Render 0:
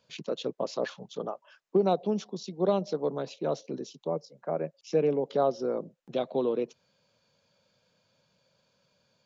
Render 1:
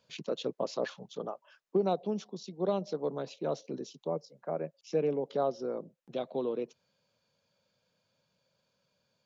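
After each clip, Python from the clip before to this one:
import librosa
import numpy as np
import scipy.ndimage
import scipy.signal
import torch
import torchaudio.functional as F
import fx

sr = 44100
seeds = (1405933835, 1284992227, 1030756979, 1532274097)

y = fx.rider(x, sr, range_db=3, speed_s=2.0)
y = y * librosa.db_to_amplitude(-4.5)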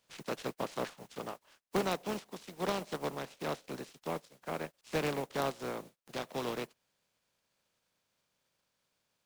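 y = fx.spec_flatten(x, sr, power=0.4)
y = fx.dynamic_eq(y, sr, hz=5000.0, q=0.77, threshold_db=-51.0, ratio=4.0, max_db=-5)
y = fx.noise_mod_delay(y, sr, seeds[0], noise_hz=1500.0, depth_ms=0.033)
y = y * librosa.db_to_amplitude(-3.0)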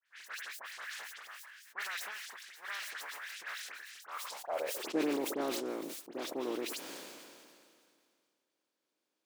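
y = fx.dispersion(x, sr, late='highs', ms=66.0, hz=2500.0)
y = fx.filter_sweep_highpass(y, sr, from_hz=1700.0, to_hz=310.0, start_s=4.0, end_s=4.93, q=4.4)
y = fx.sustainer(y, sr, db_per_s=26.0)
y = y * librosa.db_to_amplitude(-6.5)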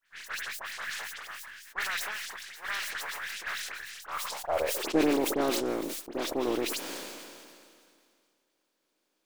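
y = np.where(x < 0.0, 10.0 ** (-3.0 / 20.0) * x, x)
y = y * librosa.db_to_amplitude(8.5)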